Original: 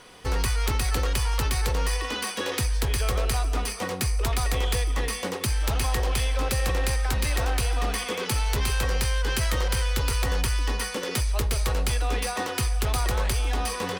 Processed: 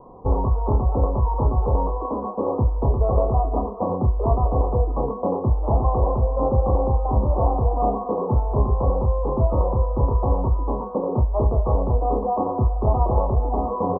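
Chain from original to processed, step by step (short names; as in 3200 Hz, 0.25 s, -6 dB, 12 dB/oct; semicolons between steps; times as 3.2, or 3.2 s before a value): steep low-pass 1100 Hz 96 dB/oct; dynamic EQ 640 Hz, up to +5 dB, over -50 dBFS, Q 3.5; doubler 29 ms -6 dB; gain +7 dB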